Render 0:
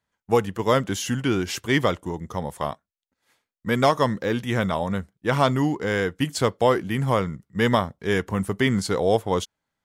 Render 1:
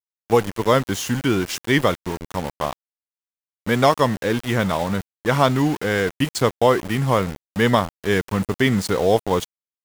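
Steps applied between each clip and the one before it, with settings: small samples zeroed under -30 dBFS; trim +3 dB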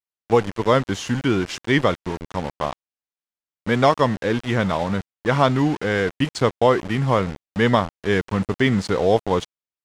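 distance through air 76 m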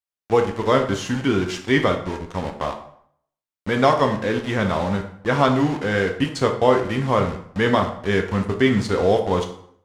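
plate-style reverb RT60 0.64 s, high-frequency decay 0.75×, DRR 3.5 dB; trim -1.5 dB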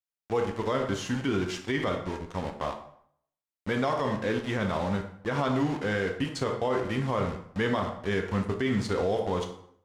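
peak limiter -12 dBFS, peak gain reduction 10 dB; trim -6 dB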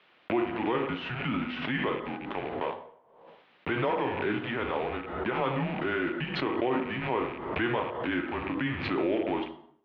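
rattle on loud lows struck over -37 dBFS, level -31 dBFS; mistuned SSB -120 Hz 310–3400 Hz; swell ahead of each attack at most 54 dB/s

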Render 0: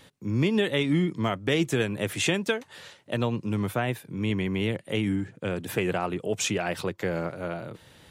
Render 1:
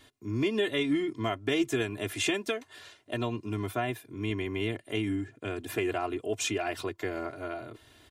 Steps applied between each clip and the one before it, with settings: comb 2.9 ms, depth 91%; trim -6 dB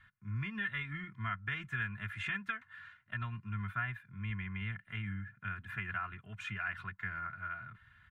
FFT filter 130 Hz 0 dB, 190 Hz +5 dB, 280 Hz -28 dB, 540 Hz -29 dB, 1.5 kHz +8 dB, 5.3 kHz -25 dB; trim -2.5 dB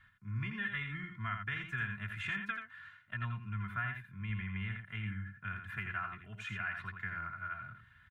delay 84 ms -6.5 dB; trim -1 dB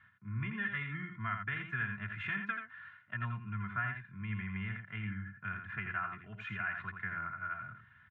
band-pass 110–2300 Hz; trim +2.5 dB

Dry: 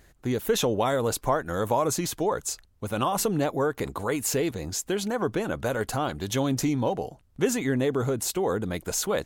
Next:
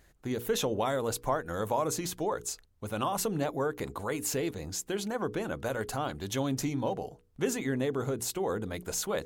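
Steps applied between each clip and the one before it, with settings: hum notches 60/120/180/240/300/360/420/480 Hz; trim -5 dB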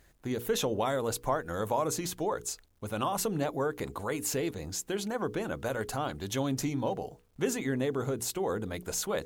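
bit crusher 12-bit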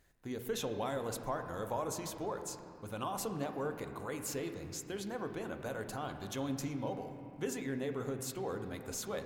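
reverberation RT60 3.1 s, pre-delay 3 ms, DRR 6 dB; trim -8 dB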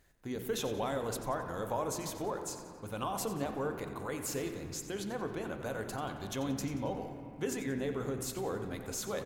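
frequency-shifting echo 90 ms, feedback 46%, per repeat -68 Hz, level -13 dB; trim +2 dB

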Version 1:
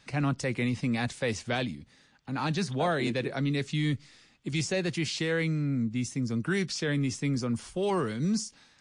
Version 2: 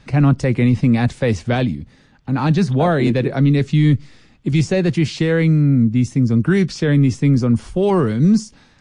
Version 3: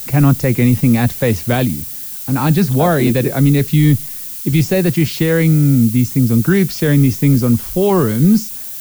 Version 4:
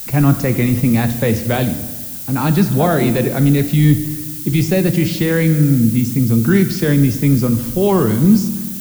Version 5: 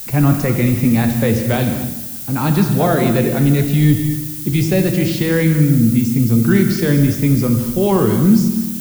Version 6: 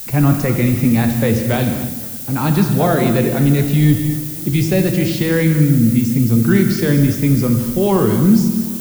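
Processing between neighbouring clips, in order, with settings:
tilt EQ -2.5 dB/octave; trim +9 dB
added noise violet -30 dBFS; trim +2.5 dB
reverberation RT60 1.4 s, pre-delay 5 ms, DRR 9 dB; trim -1.5 dB
gated-style reverb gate 280 ms flat, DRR 7 dB; trim -1 dB
modulated delay 259 ms, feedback 72%, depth 170 cents, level -23 dB

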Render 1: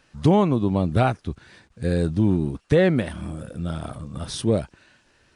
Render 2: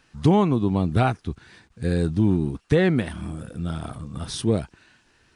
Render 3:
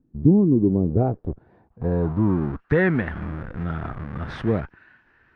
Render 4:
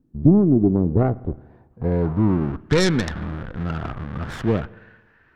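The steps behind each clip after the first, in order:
peaking EQ 570 Hz -8.5 dB 0.24 oct
in parallel at -11 dB: Schmitt trigger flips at -32.5 dBFS; on the sum: low-pass sweep 270 Hz -> 1.7 kHz, 0.25–2.80 s; trim -2 dB
tracing distortion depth 0.37 ms; spring tank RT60 1.2 s, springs 55 ms, chirp 80 ms, DRR 20 dB; trim +1.5 dB

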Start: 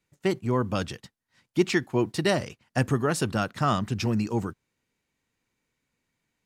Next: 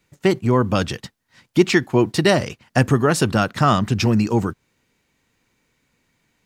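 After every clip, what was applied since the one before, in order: peaking EQ 9.8 kHz -2.5 dB 0.81 oct; in parallel at +0.5 dB: compression, threshold -33 dBFS, peak gain reduction 16 dB; on the sum: trim +6 dB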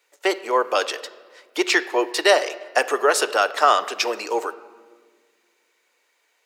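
steep high-pass 420 Hz 36 dB/octave; reverberation RT60 1.6 s, pre-delay 7 ms, DRR 12.5 dB; trim +2 dB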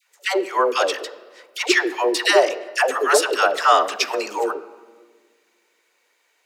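phase dispersion lows, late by 137 ms, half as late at 610 Hz; trim +1.5 dB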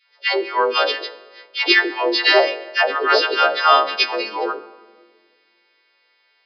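partials quantised in pitch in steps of 2 st; resampled via 11.025 kHz

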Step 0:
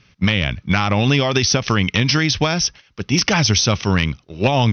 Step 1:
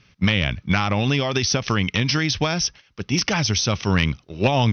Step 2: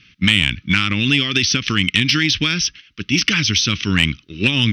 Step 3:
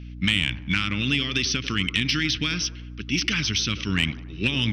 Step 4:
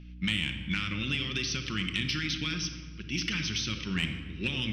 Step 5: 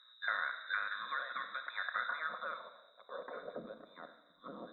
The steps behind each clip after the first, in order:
gain riding 0.5 s; trim -3.5 dB
FFT filter 140 Hz 0 dB, 300 Hz +6 dB, 740 Hz -22 dB, 1.3 kHz +2 dB, 3 kHz +12 dB, 5.3 kHz +3 dB; saturation -1.5 dBFS, distortion -20 dB
hum 60 Hz, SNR 12 dB; feedback echo behind a band-pass 94 ms, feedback 52%, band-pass 590 Hz, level -9 dB; trim -7.5 dB
simulated room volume 1700 m³, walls mixed, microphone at 0.95 m; trim -8.5 dB
frequency inversion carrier 3.8 kHz; static phaser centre 550 Hz, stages 8; band-pass sweep 1.7 kHz -> 320 Hz, 1.94–3.77 s; trim +2 dB

